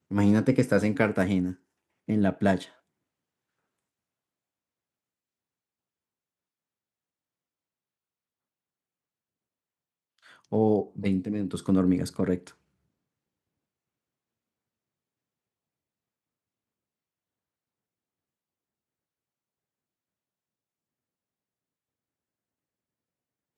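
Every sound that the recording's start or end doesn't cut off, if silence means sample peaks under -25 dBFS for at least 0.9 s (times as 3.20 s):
10.53–12.35 s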